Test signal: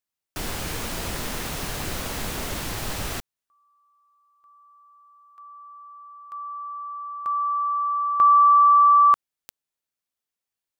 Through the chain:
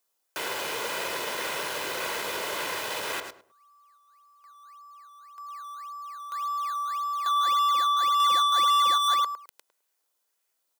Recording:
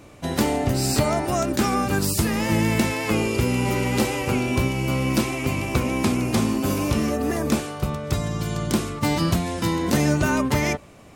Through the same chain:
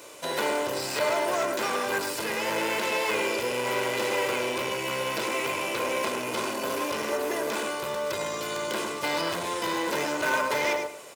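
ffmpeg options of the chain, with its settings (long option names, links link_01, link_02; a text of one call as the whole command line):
ffmpeg -i in.wav -filter_complex "[0:a]asplit=2[link_01][link_02];[link_02]adelay=105,lowpass=frequency=1400:poles=1,volume=-6dB,asplit=2[link_03][link_04];[link_04]adelay=105,lowpass=frequency=1400:poles=1,volume=0.27,asplit=2[link_05][link_06];[link_06]adelay=105,lowpass=frequency=1400:poles=1,volume=0.27[link_07];[link_03][link_05][link_07]amix=inputs=3:normalize=0[link_08];[link_01][link_08]amix=inputs=2:normalize=0,asoftclip=type=tanh:threshold=-23dB,highshelf=frequency=3100:gain=11,aecho=1:1:2:0.5,acrossover=split=3400[link_09][link_10];[link_10]acompressor=threshold=-39dB:ratio=4:attack=1:release=60[link_11];[link_09][link_11]amix=inputs=2:normalize=0,asplit=2[link_12][link_13];[link_13]acrusher=samples=13:mix=1:aa=0.000001:lfo=1:lforange=13:lforate=1.8,volume=-10dB[link_14];[link_12][link_14]amix=inputs=2:normalize=0,highpass=420" out.wav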